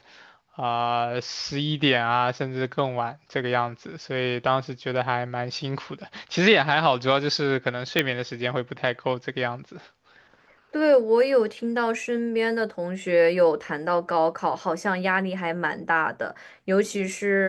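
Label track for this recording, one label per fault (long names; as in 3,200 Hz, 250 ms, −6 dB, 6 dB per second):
7.990000	7.990000	click −6 dBFS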